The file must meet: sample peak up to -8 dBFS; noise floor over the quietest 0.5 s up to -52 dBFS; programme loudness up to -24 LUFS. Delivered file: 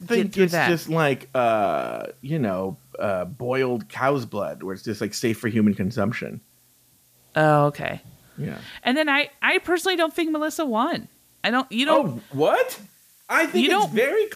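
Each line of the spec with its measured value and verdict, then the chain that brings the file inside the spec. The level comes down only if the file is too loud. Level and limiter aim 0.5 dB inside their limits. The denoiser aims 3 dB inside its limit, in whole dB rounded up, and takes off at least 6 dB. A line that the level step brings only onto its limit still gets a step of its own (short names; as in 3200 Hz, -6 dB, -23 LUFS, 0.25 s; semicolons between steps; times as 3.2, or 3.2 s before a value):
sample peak -5.5 dBFS: fail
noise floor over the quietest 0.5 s -59 dBFS: OK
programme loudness -22.5 LUFS: fail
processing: gain -2 dB; limiter -8.5 dBFS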